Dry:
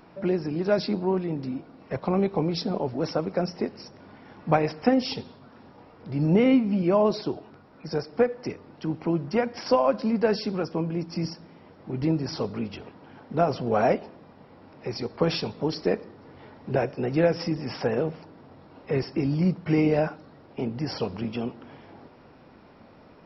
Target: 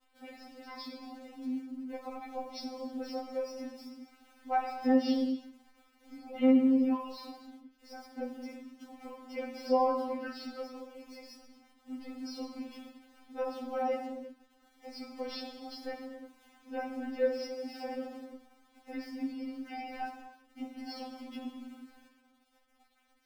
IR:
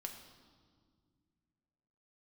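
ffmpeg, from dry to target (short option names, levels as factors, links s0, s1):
-filter_complex "[0:a]aeval=exprs='val(0)*gte(abs(val(0)),0.00631)':c=same[s0];[1:a]atrim=start_sample=2205,afade=t=out:st=0.42:d=0.01,atrim=end_sample=18963[s1];[s0][s1]afir=irnorm=-1:irlink=0,afftfilt=real='re*3.46*eq(mod(b,12),0)':imag='im*3.46*eq(mod(b,12),0)':win_size=2048:overlap=0.75,volume=0.562"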